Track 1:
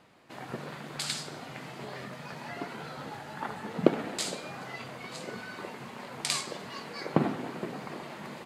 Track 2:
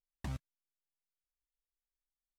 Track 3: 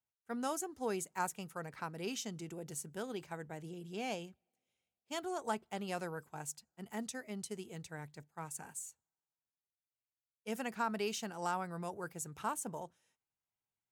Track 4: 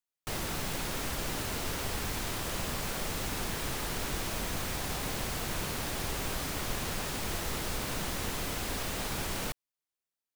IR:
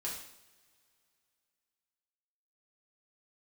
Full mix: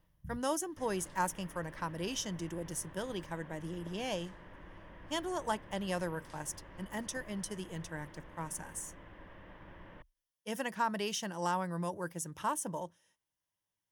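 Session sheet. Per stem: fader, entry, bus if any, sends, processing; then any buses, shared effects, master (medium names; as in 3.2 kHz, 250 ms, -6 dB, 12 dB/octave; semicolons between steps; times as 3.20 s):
-18.5 dB, 0.00 s, no send, auto duck -13 dB, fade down 0.25 s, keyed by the third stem
-5.5 dB, 0.00 s, no send, spectral levelling over time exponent 0.4; inverse Chebyshev band-stop 360–7700 Hz, stop band 40 dB
+3.0 dB, 0.00 s, no send, none
-17.0 dB, 0.50 s, no send, low-pass 2.3 kHz 24 dB/octave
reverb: none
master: rippled EQ curve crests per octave 1.2, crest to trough 8 dB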